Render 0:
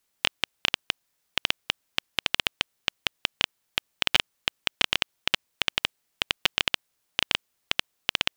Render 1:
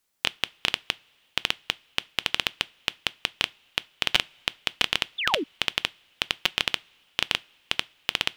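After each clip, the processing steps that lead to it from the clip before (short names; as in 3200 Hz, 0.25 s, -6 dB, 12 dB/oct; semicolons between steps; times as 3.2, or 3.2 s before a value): two-slope reverb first 0.25 s, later 2.8 s, from -22 dB, DRR 18.5 dB; painted sound fall, 5.18–5.44, 250–3800 Hz -28 dBFS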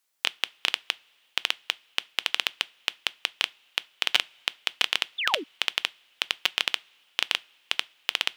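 HPF 650 Hz 6 dB/oct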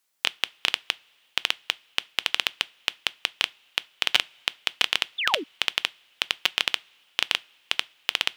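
low shelf 110 Hz +8 dB; gain +1.5 dB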